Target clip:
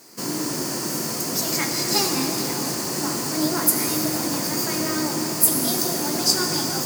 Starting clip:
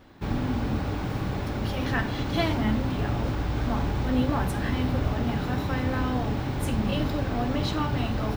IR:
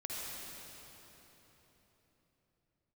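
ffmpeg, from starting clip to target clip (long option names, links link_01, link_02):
-filter_complex "[0:a]aexciter=amount=12:drive=7.5:freq=4800,highpass=frequency=140:width=0.5412,highpass=frequency=140:width=1.3066,equalizer=frequency=3700:width_type=o:width=0.36:gain=10.5,asetrate=53802,aresample=44100,asplit=2[link_01][link_02];[1:a]atrim=start_sample=2205,adelay=20[link_03];[link_02][link_03]afir=irnorm=-1:irlink=0,volume=-4.5dB[link_04];[link_01][link_04]amix=inputs=2:normalize=0"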